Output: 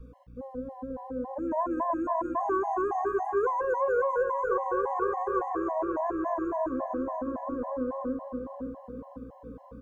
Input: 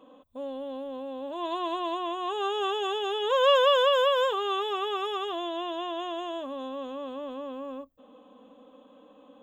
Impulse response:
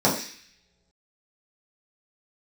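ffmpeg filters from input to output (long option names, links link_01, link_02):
-filter_complex "[0:a]asuperstop=centerf=3600:order=8:qfactor=0.74,asplit=2[link_01][link_02];[link_02]adelay=505,lowpass=frequency=4000:poles=1,volume=-8dB,asplit=2[link_03][link_04];[link_04]adelay=505,lowpass=frequency=4000:poles=1,volume=0.48,asplit=2[link_05][link_06];[link_06]adelay=505,lowpass=frequency=4000:poles=1,volume=0.48,asplit=2[link_07][link_08];[link_08]adelay=505,lowpass=frequency=4000:poles=1,volume=0.48,asplit=2[link_09][link_10];[link_10]adelay=505,lowpass=frequency=4000:poles=1,volume=0.48,asplit=2[link_11][link_12];[link_12]adelay=505,lowpass=frequency=4000:poles=1,volume=0.48[link_13];[link_01][link_03][link_05][link_07][link_09][link_11][link_13]amix=inputs=7:normalize=0,dynaudnorm=framelen=130:gausssize=17:maxgain=7dB,asetrate=42336,aresample=44100,aeval=exprs='val(0)+0.00224*(sin(2*PI*60*n/s)+sin(2*PI*2*60*n/s)/2+sin(2*PI*3*60*n/s)/3+sin(2*PI*4*60*n/s)/4+sin(2*PI*5*60*n/s)/5)':channel_layout=same,lowshelf=frequency=85:gain=10,acrusher=bits=10:mix=0:aa=0.000001,bass=frequency=250:gain=5,treble=frequency=4000:gain=-14,bandreject=frequency=58.77:width_type=h:width=4,bandreject=frequency=117.54:width_type=h:width=4,bandreject=frequency=176.31:width_type=h:width=4,bandreject=frequency=235.08:width_type=h:width=4,bandreject=frequency=293.85:width_type=h:width=4,bandreject=frequency=352.62:width_type=h:width=4,bandreject=frequency=411.39:width_type=h:width=4,bandreject=frequency=470.16:width_type=h:width=4,bandreject=frequency=528.93:width_type=h:width=4,bandreject=frequency=587.7:width_type=h:width=4,bandreject=frequency=646.47:width_type=h:width=4,bandreject=frequency=705.24:width_type=h:width=4,bandreject=frequency=764.01:width_type=h:width=4,bandreject=frequency=822.78:width_type=h:width=4,bandreject=frequency=881.55:width_type=h:width=4,bandreject=frequency=940.32:width_type=h:width=4,asplit=2[link_14][link_15];[1:a]atrim=start_sample=2205,adelay=134[link_16];[link_15][link_16]afir=irnorm=-1:irlink=0,volume=-35dB[link_17];[link_14][link_17]amix=inputs=2:normalize=0,acrossover=split=540|1600[link_18][link_19][link_20];[link_18]acompressor=threshold=-29dB:ratio=4[link_21];[link_19]acompressor=threshold=-26dB:ratio=4[link_22];[link_20]acompressor=threshold=-40dB:ratio=4[link_23];[link_21][link_22][link_23]amix=inputs=3:normalize=0,afftfilt=real='re*gt(sin(2*PI*3.6*pts/sr)*(1-2*mod(floor(b*sr/1024/550),2)),0)':imag='im*gt(sin(2*PI*3.6*pts/sr)*(1-2*mod(floor(b*sr/1024/550),2)),0)':win_size=1024:overlap=0.75"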